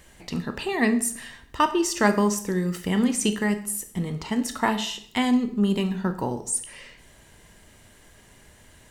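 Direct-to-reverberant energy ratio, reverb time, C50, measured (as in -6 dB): 9.0 dB, 0.60 s, 13.0 dB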